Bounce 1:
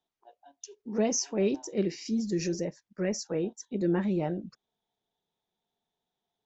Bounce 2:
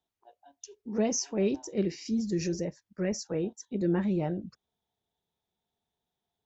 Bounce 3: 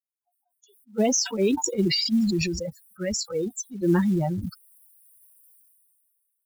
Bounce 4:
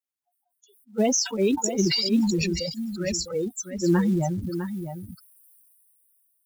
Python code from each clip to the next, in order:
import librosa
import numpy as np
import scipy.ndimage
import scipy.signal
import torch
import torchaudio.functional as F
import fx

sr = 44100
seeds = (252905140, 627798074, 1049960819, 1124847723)

y1 = fx.peak_eq(x, sr, hz=73.0, db=11.0, octaves=1.4)
y1 = y1 * librosa.db_to_amplitude(-1.5)
y2 = fx.bin_expand(y1, sr, power=3.0)
y2 = fx.quant_float(y2, sr, bits=4)
y2 = fx.sustainer(y2, sr, db_per_s=25.0)
y2 = y2 * librosa.db_to_amplitude(8.5)
y3 = y2 + 10.0 ** (-9.5 / 20.0) * np.pad(y2, (int(654 * sr / 1000.0), 0))[:len(y2)]